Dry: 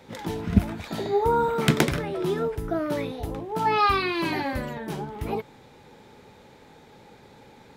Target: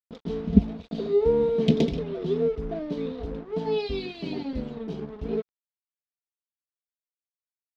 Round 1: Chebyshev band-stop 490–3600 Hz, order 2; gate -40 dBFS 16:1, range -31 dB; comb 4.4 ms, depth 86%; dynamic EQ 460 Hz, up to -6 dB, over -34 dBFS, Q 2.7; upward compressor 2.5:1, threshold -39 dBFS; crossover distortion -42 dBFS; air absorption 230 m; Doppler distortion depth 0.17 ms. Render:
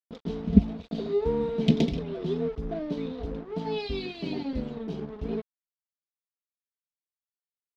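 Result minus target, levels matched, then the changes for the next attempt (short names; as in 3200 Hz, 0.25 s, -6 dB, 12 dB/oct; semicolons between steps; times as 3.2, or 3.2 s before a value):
500 Hz band -3.0 dB
change: dynamic EQ 1500 Hz, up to -6 dB, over -34 dBFS, Q 2.7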